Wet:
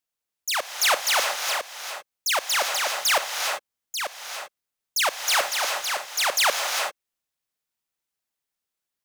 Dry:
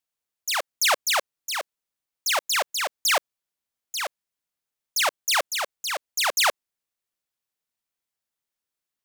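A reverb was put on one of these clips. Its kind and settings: gated-style reverb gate 420 ms rising, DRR 4 dB

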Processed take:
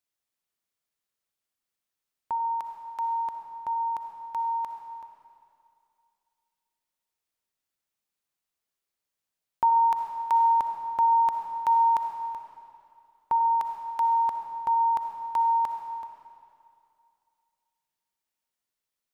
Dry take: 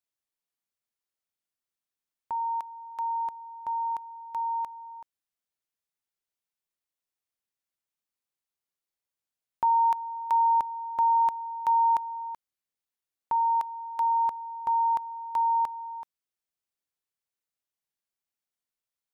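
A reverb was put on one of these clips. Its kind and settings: algorithmic reverb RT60 2.5 s, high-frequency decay 0.9×, pre-delay 20 ms, DRR 4.5 dB; trim +2.5 dB

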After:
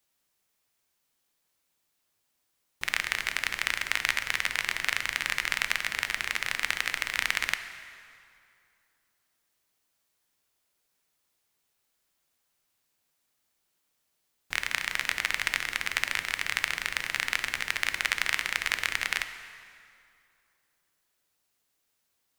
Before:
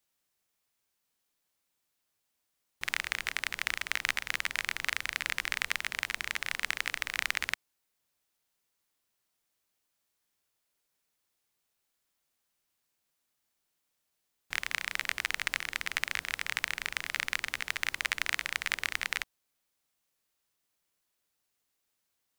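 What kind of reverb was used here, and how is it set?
plate-style reverb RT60 2.5 s, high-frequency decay 0.75×, DRR 8.5 dB; trim +3.5 dB

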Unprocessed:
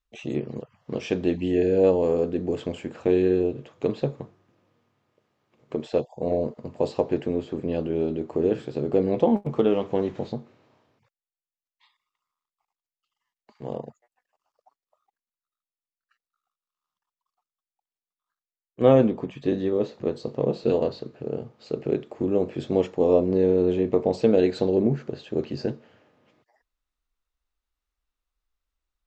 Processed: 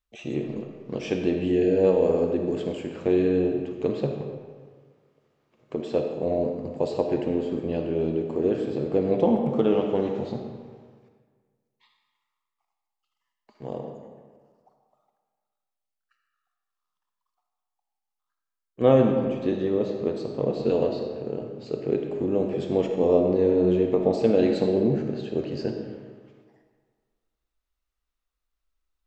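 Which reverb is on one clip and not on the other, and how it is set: algorithmic reverb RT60 1.6 s, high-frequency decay 0.7×, pre-delay 15 ms, DRR 3.5 dB; trim -1.5 dB

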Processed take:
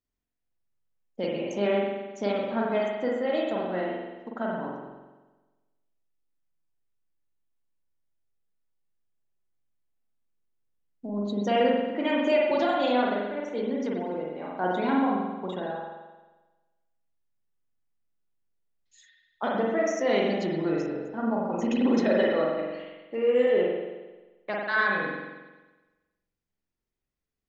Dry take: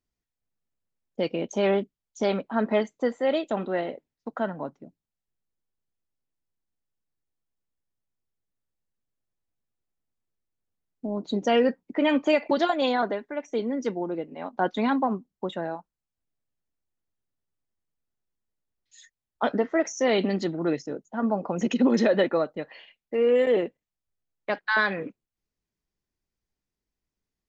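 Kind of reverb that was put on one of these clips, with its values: spring tank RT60 1.2 s, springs 44 ms, chirp 80 ms, DRR -3 dB; trim -5.5 dB

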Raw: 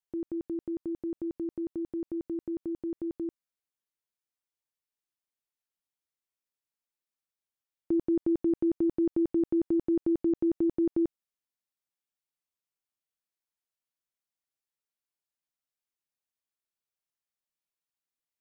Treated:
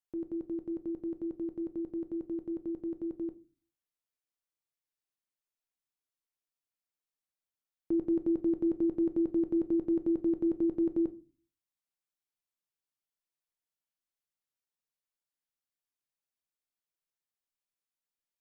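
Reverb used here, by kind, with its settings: simulated room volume 150 m³, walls furnished, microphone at 0.48 m; trim -4 dB

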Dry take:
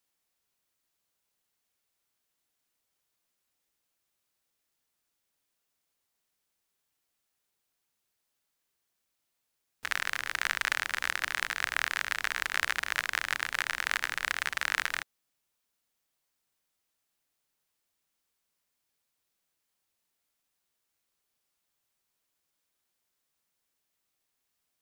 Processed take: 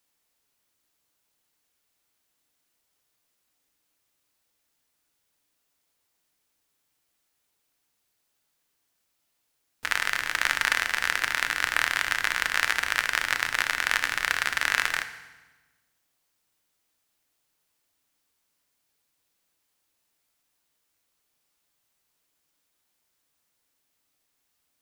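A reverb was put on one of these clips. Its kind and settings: FDN reverb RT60 1.2 s, low-frequency decay 1.4×, high-frequency decay 0.9×, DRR 8.5 dB; trim +5 dB

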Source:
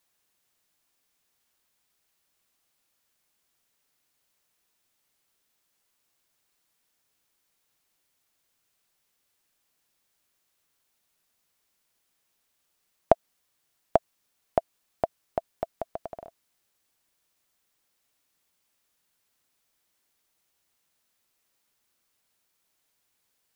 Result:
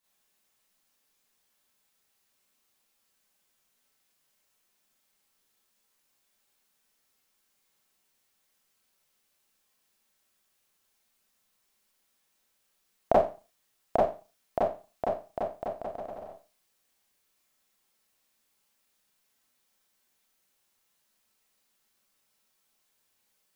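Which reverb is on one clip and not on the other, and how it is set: Schroeder reverb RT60 0.33 s, combs from 29 ms, DRR -8 dB; trim -7.5 dB

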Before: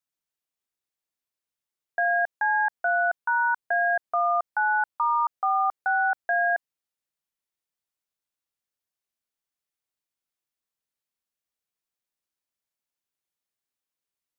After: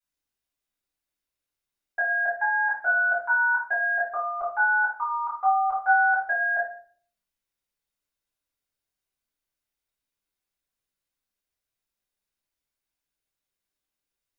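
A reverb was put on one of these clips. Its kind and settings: simulated room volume 46 m³, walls mixed, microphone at 3 m; trim -10.5 dB

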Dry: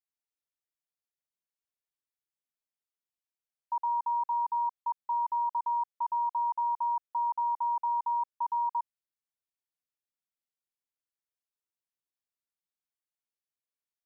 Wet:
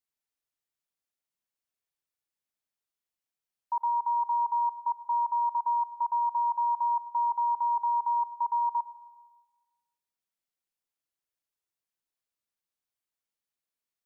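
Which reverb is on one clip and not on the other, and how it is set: algorithmic reverb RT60 1.3 s, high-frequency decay 0.7×, pre-delay 45 ms, DRR 15.5 dB; trim +2 dB

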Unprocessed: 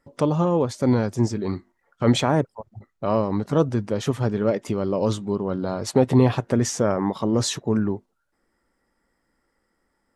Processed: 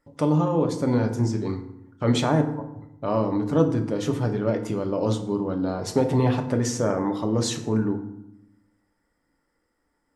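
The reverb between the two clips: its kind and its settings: FDN reverb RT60 0.81 s, low-frequency decay 1.45×, high-frequency decay 0.6×, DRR 4.5 dB; trim -3.5 dB

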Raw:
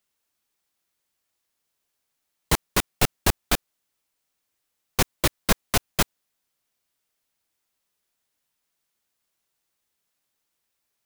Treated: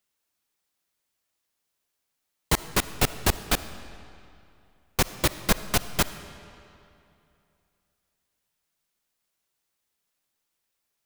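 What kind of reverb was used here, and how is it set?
algorithmic reverb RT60 2.7 s, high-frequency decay 0.8×, pre-delay 20 ms, DRR 13 dB; trim -1.5 dB

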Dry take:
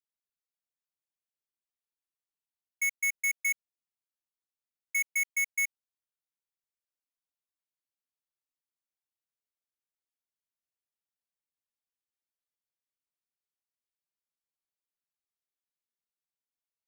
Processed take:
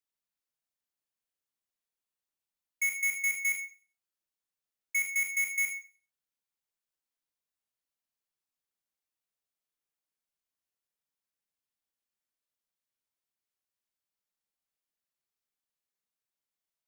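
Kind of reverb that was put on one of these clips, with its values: Schroeder reverb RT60 0.39 s, combs from 29 ms, DRR 3.5 dB

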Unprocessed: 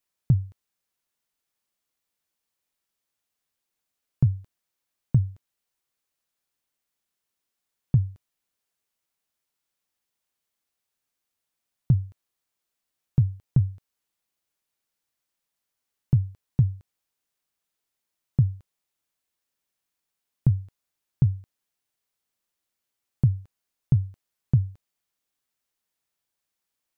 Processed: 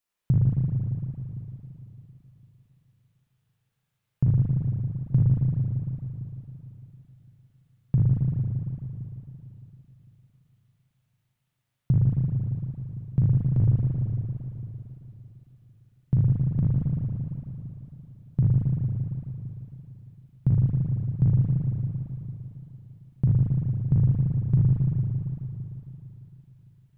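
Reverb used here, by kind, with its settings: spring tank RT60 3.5 s, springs 38/56 ms, chirp 45 ms, DRR -7 dB; trim -3 dB

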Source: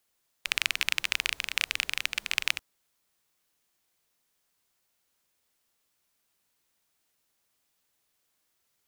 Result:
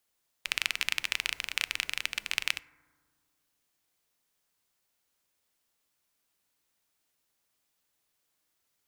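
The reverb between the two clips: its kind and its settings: FDN reverb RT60 1.6 s, low-frequency decay 1.45×, high-frequency decay 0.25×, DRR 17 dB; trim -2.5 dB

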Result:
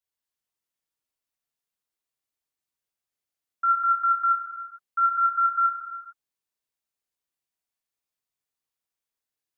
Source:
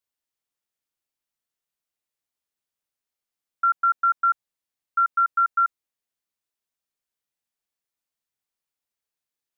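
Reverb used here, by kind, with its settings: gated-style reverb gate 480 ms falling, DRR -3 dB; trim -6 dB

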